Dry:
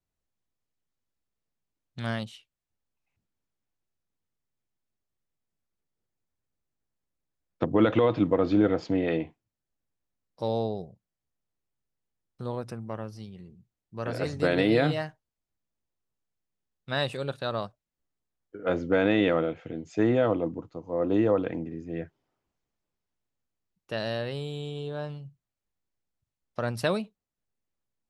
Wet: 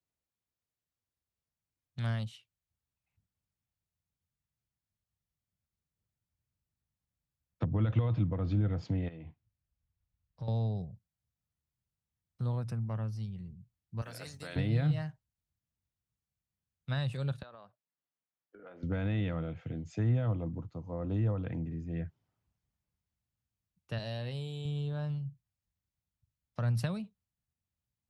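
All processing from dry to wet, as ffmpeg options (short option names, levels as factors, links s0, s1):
-filter_complex "[0:a]asettb=1/sr,asplit=3[s0][s1][s2];[s0]atrim=end=9.084[s3];[s1]atrim=start=9.08:end=10.48,asetpts=PTS-STARTPTS,afade=t=in:d=0.004:c=qsin,afade=t=out:st=1.396:d=0.004:c=qsin,lowpass=4000,asubboost=boost=10.5:cutoff=100,acompressor=threshold=0.0126:ratio=6:attack=3.2:release=140:knee=1:detection=peak[s4];[s2]atrim=start=10.476[s5];[s3][s4]acrossfade=d=0.004:c1=hsin:c2=qsin[s6];[s6][s5]acrossfade=d=0.004:c1=qsin:c2=hsin,asettb=1/sr,asplit=3[s7][s8][s9];[s7]atrim=end=14.014[s10];[s8]atrim=start=14.01:end=14.56,asetpts=PTS-STARTPTS,afade=t=in:d=0.004:c=qsin,afade=t=out:st=0.546:d=0.004:c=qsin,agate=range=0.0224:threshold=0.0316:ratio=3:release=100:detection=peak,acompressor=threshold=0.0158:ratio=2.5:attack=3.2:release=140:knee=1:detection=peak,aemphasis=mode=production:type=riaa[s11];[s9]atrim=start=14.556[s12];[s10][s11]acrossfade=d=0.004:c1=hsin:c2=qsin[s13];[s13][s12]acrossfade=d=0.004:c1=qsin:c2=hsin,asettb=1/sr,asplit=3[s14][s15][s16];[s14]atrim=end=17.424[s17];[s15]atrim=start=17.42:end=18.83,asetpts=PTS-STARTPTS,afade=t=in:d=0.004:c=qsin,afade=t=out:st=1.406:d=0.004:c=qsin,highpass=370,lowpass=2800,acompressor=threshold=0.01:ratio=12:attack=3.2:release=140:knee=1:detection=peak[s18];[s16]atrim=start=18.826[s19];[s17][s18]acrossfade=d=0.004:c1=hsin:c2=qsin[s20];[s20][s19]acrossfade=d=0.004:c1=qsin:c2=hsin,asettb=1/sr,asplit=3[s21][s22][s23];[s21]atrim=end=23.984[s24];[s22]atrim=start=23.98:end=24.65,asetpts=PTS-STARTPTS,afade=t=in:d=0.004:c=qsin,afade=t=out:st=0.666:d=0.004:c=qsin,highpass=f=260:p=1,equalizer=f=1400:t=o:w=0.66:g=-8.5,asplit=2[s25][s26];[s26]adelay=16,volume=0.224[s27];[s25][s27]amix=inputs=2:normalize=0,atrim=end_sample=29547[s28];[s23]atrim=start=24.646[s29];[s24][s28]acrossfade=d=0.004:c1=hsin:c2=qsin[s30];[s30][s29]acrossfade=d=0.004:c1=qsin:c2=hsin,highpass=72,asubboost=boost=8.5:cutoff=120,acrossover=split=160[s31][s32];[s32]acompressor=threshold=0.0282:ratio=6[s33];[s31][s33]amix=inputs=2:normalize=0,volume=0.562"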